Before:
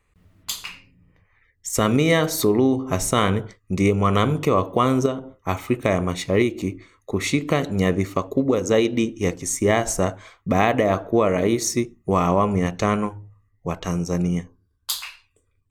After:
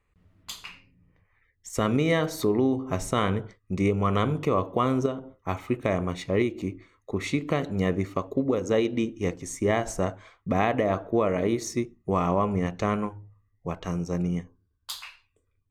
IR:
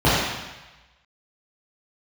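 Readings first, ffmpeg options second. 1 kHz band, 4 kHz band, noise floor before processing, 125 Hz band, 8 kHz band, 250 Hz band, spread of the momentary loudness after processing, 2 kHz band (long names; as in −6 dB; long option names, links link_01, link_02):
−5.5 dB, −8.5 dB, −66 dBFS, −5.0 dB, −11.5 dB, −5.0 dB, 13 LU, −6.5 dB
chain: -af "aemphasis=mode=reproduction:type=cd,volume=-5.5dB"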